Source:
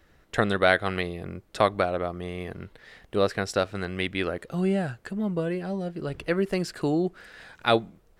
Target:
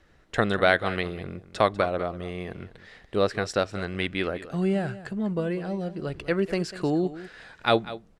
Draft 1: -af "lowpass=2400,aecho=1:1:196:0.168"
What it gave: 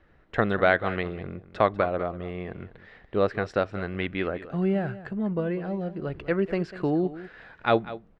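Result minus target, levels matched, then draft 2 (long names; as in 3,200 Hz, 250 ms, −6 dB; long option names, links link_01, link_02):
8,000 Hz band −17.5 dB
-af "lowpass=8600,aecho=1:1:196:0.168"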